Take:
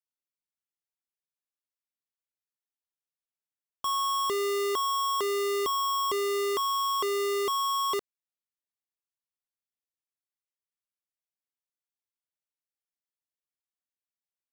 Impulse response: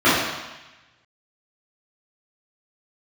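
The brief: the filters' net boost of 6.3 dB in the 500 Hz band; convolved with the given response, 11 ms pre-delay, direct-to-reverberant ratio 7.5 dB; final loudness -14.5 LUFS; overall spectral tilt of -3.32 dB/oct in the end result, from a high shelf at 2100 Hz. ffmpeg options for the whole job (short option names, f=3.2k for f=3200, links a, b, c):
-filter_complex "[0:a]equalizer=f=500:t=o:g=8.5,highshelf=f=2.1k:g=6.5,asplit=2[a][b];[1:a]atrim=start_sample=2205,adelay=11[c];[b][c]afir=irnorm=-1:irlink=0,volume=-33dB[d];[a][d]amix=inputs=2:normalize=0,volume=9dB"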